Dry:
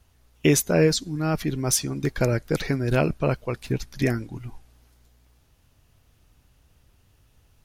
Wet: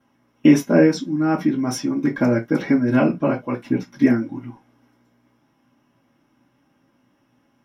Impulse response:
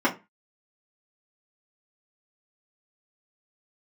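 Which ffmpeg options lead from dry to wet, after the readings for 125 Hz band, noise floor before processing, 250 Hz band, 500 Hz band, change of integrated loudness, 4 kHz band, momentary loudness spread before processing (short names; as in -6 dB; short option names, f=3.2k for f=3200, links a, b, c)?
-2.0 dB, -62 dBFS, +9.5 dB, +2.5 dB, +4.5 dB, -5.0 dB, 10 LU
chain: -filter_complex "[1:a]atrim=start_sample=2205,afade=t=out:st=0.13:d=0.01,atrim=end_sample=6174[a];[0:a][a]afir=irnorm=-1:irlink=0,volume=-12dB"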